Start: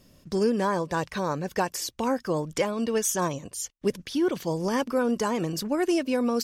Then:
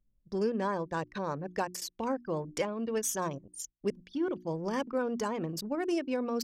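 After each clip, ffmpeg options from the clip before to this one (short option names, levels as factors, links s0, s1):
-af "anlmdn=15.8,bandreject=f=60:t=h:w=6,bandreject=f=120:t=h:w=6,bandreject=f=180:t=h:w=6,bandreject=f=240:t=h:w=6,bandreject=f=300:t=h:w=6,bandreject=f=360:t=h:w=6,volume=0.501"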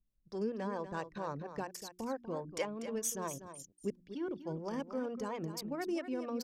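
-filter_complex "[0:a]acrossover=split=400[s0][s1];[s0]aeval=exprs='val(0)*(1-0.7/2+0.7/2*cos(2*PI*4.4*n/s))':c=same[s2];[s1]aeval=exprs='val(0)*(1-0.7/2-0.7/2*cos(2*PI*4.4*n/s))':c=same[s3];[s2][s3]amix=inputs=2:normalize=0,aecho=1:1:243:0.282,volume=0.75"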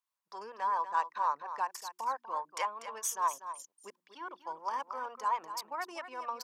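-af "highpass=f=990:t=q:w=4.9,volume=1.19"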